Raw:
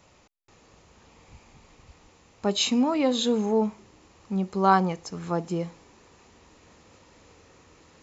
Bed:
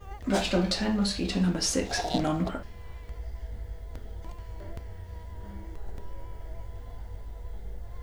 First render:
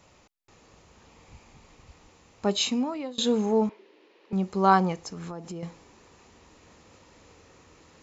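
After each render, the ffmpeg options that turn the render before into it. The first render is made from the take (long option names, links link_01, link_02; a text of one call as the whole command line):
ffmpeg -i in.wav -filter_complex "[0:a]asettb=1/sr,asplit=3[link_01][link_02][link_03];[link_01]atrim=end=3.694[link_04];[link_02]atrim=start=3.69:end=4.33,asetpts=PTS-STARTPTS,afade=type=in:duration=0.004:curve=qsin,afade=type=out:start_time=0.636:duration=0.004:curve=qsin,highpass=frequency=320:width=0.5412,highpass=frequency=320:width=1.3066,equalizer=frequency=410:width_type=q:width=4:gain=6,equalizer=frequency=760:width_type=q:width=4:gain=-8,equalizer=frequency=1200:width_type=q:width=4:gain=-9,lowpass=frequency=4000:width=0.5412,lowpass=frequency=4000:width=1.3066[link_05];[link_03]atrim=start=4.326[link_06];[link_04][link_05]acrossfade=duration=0.004:curve1=hsin:curve2=qsin[link_07];[link_07][link_06]acrossfade=duration=0.004:curve1=qsin:curve2=hsin,asettb=1/sr,asplit=3[link_08][link_09][link_10];[link_08]atrim=end=5.084[link_11];[link_09]atrim=start=5.08:end=5.63,asetpts=PTS-STARTPTS,afade=type=in:duration=0.004:curve=qsin,afade=type=out:start_time=0.546:duration=0.004:curve=qsin,acompressor=threshold=-34dB:ratio=6:attack=3.2:release=140:knee=1:detection=peak[link_12];[link_10]atrim=start=5.626[link_13];[link_11][link_12]acrossfade=duration=0.004:curve1=hsin:curve2=qsin[link_14];[link_14][link_13]acrossfade=duration=0.004:curve1=qsin:curve2=hsin,asplit=2[link_15][link_16];[link_15]atrim=end=3.18,asetpts=PTS-STARTPTS,afade=type=out:start_time=2.5:duration=0.68:silence=0.0749894[link_17];[link_16]atrim=start=3.18,asetpts=PTS-STARTPTS,afade=type=in:duration=0.004:curve=hsin:silence=0.0749894[link_18];[link_17][link_18]concat=n=2:v=0:a=1" out.wav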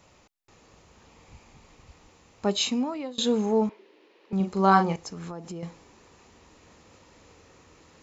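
ffmpeg -i in.wav -filter_complex "[0:a]asettb=1/sr,asplit=3[link_01][link_02][link_03];[link_01]atrim=end=4.364[link_04];[link_02]atrim=start=4.36:end=4.96,asetpts=PTS-STARTPTS,afade=type=in:duration=0.004:curve=qsin,afade=type=out:start_time=0.596:duration=0.004:curve=qsin,asplit=2[link_05][link_06];[link_06]adelay=41,volume=-6dB[link_07];[link_05][link_07]amix=inputs=2:normalize=0,atrim=end_sample=26460[link_08];[link_03]atrim=start=4.956[link_09];[link_04][link_08]acrossfade=duration=0.004:curve1=hsin:curve2=qsin[link_10];[link_10][link_09]acrossfade=duration=0.004:curve1=qsin:curve2=hsin" out.wav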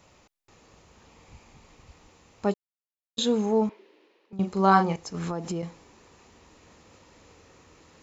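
ffmpeg -i in.wav -filter_complex "[0:a]asettb=1/sr,asplit=3[link_01][link_02][link_03];[link_01]atrim=end=5.144[link_04];[link_02]atrim=start=5.14:end=5.62,asetpts=PTS-STARTPTS,afade=type=in:duration=0.004:curve=qsin,afade=type=out:start_time=0.476:duration=0.004:curve=qsin,acontrast=63[link_05];[link_03]atrim=start=5.616[link_06];[link_04][link_05]acrossfade=duration=0.004:curve1=hsin:curve2=qsin[link_07];[link_07][link_06]acrossfade=duration=0.004:curve1=qsin:curve2=hsin,asplit=4[link_08][link_09][link_10][link_11];[link_08]atrim=end=2.54,asetpts=PTS-STARTPTS,afade=type=out:start_time=2.536:duration=0.004:curve=hsin[link_12];[link_09]atrim=start=2.54:end=3.17,asetpts=PTS-STARTPTS,volume=0[link_13];[link_10]atrim=start=3.17:end=4.39,asetpts=PTS-STARTPTS,afade=type=in:duration=0.004:curve=hsin,afade=type=out:start_time=0.51:duration=0.71:curve=qsin:silence=0.141254[link_14];[link_11]atrim=start=4.39,asetpts=PTS-STARTPTS,afade=type=in:duration=0.004:curve=hsin:silence=0.141254[link_15];[link_12][link_13][link_14][link_15]concat=n=4:v=0:a=1" out.wav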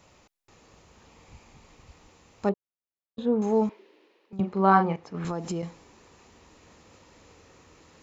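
ffmpeg -i in.wav -filter_complex "[0:a]asettb=1/sr,asplit=3[link_01][link_02][link_03];[link_01]atrim=end=2.494[link_04];[link_02]atrim=start=2.49:end=3.42,asetpts=PTS-STARTPTS,afade=type=in:duration=0.004:curve=qsin,afade=type=out:start_time=0.926:duration=0.004:curve=qsin,lowpass=1100[link_05];[link_03]atrim=start=3.416[link_06];[link_04][link_05]acrossfade=duration=0.004:curve1=hsin:curve2=qsin[link_07];[link_07][link_06]acrossfade=duration=0.004:curve1=qsin:curve2=hsin,asettb=1/sr,asplit=3[link_08][link_09][link_10];[link_08]atrim=end=4.404[link_11];[link_09]atrim=start=4.4:end=5.25,asetpts=PTS-STARTPTS,afade=type=in:duration=0.004:curve=qsin,afade=type=out:start_time=0.846:duration=0.004:curve=qsin,highpass=110,lowpass=2500[link_12];[link_10]atrim=start=5.246[link_13];[link_11][link_12]acrossfade=duration=0.004:curve1=hsin:curve2=qsin[link_14];[link_14][link_13]acrossfade=duration=0.004:curve1=qsin:curve2=hsin" out.wav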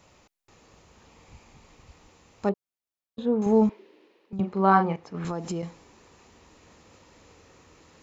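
ffmpeg -i in.wav -filter_complex "[0:a]asettb=1/sr,asplit=3[link_01][link_02][link_03];[link_01]atrim=end=3.464[link_04];[link_02]atrim=start=3.46:end=4.39,asetpts=PTS-STARTPTS,afade=type=in:duration=0.004:curve=qsin,afade=type=out:start_time=0.926:duration=0.004:curve=qsin,lowshelf=frequency=240:gain=10[link_05];[link_03]atrim=start=4.386[link_06];[link_04][link_05]acrossfade=duration=0.004:curve1=hsin:curve2=qsin[link_07];[link_07][link_06]acrossfade=duration=0.004:curve1=qsin:curve2=hsin" out.wav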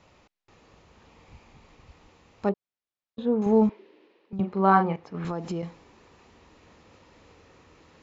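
ffmpeg -i in.wav -af "lowpass=4600" out.wav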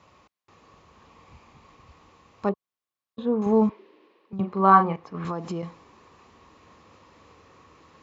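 ffmpeg -i in.wav -af "highpass=56,equalizer=frequency=1100:width=6.8:gain=11.5" out.wav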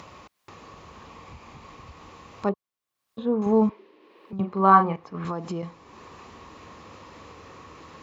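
ffmpeg -i in.wav -af "acompressor=mode=upward:threshold=-36dB:ratio=2.5" out.wav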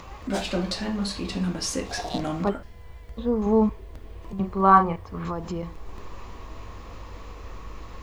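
ffmpeg -i in.wav -i bed.wav -filter_complex "[1:a]volume=-1.5dB[link_01];[0:a][link_01]amix=inputs=2:normalize=0" out.wav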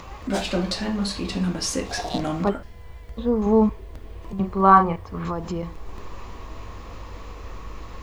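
ffmpeg -i in.wav -af "volume=2.5dB,alimiter=limit=-1dB:level=0:latency=1" out.wav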